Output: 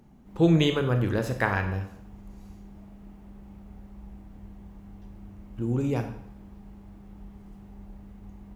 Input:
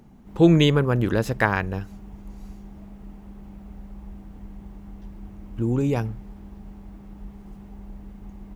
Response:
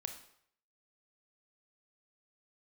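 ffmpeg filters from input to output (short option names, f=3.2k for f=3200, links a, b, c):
-filter_complex "[1:a]atrim=start_sample=2205,asetrate=42777,aresample=44100[a];[0:a][a]afir=irnorm=-1:irlink=0,volume=-2.5dB"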